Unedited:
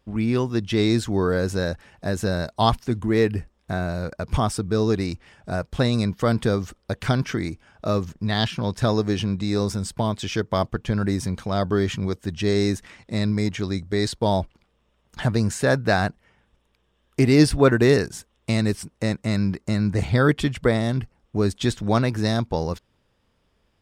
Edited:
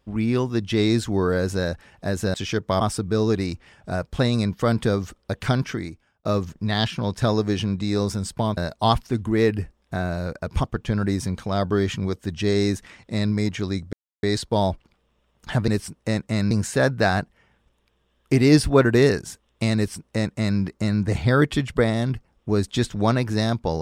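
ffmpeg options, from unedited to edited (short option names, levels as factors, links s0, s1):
-filter_complex "[0:a]asplit=9[s0][s1][s2][s3][s4][s5][s6][s7][s8];[s0]atrim=end=2.342[s9];[s1]atrim=start=10.168:end=10.642[s10];[s2]atrim=start=4.408:end=7.85,asetpts=PTS-STARTPTS,afade=t=out:st=2.772:d=0.67[s11];[s3]atrim=start=7.85:end=10.172,asetpts=PTS-STARTPTS,afade=t=in:d=0.004:c=hsin[s12];[s4]atrim=start=2.338:end=4.412[s13];[s5]atrim=start=10.638:end=13.93,asetpts=PTS-STARTPTS,afade=t=out:st=3.288:d=0.004:c=hsin,apad=pad_dur=0.3[s14];[s6]atrim=start=13.93:end=15.382,asetpts=PTS-STARTPTS,afade=t=in:d=0.004:c=hsin[s15];[s7]atrim=start=18.628:end=19.462[s16];[s8]atrim=start=15.378[s17];[s9][s10]acrossfade=d=0.004:c1=hsin:c2=hsin[s18];[s11][s12]concat=n=2:v=0:a=1[s19];[s18][s19]acrossfade=d=0.004:c1=hsin:c2=hsin[s20];[s20][s13]acrossfade=d=0.004:c1=hsin:c2=hsin[s21];[s14][s15]concat=n=2:v=0:a=1[s22];[s21][s22]acrossfade=d=0.004:c1=hsin:c2=hsin[s23];[s23][s16]acrossfade=d=0.004:c1=hsin:c2=hsin[s24];[s24][s17]acrossfade=d=0.004:c1=hsin:c2=hsin"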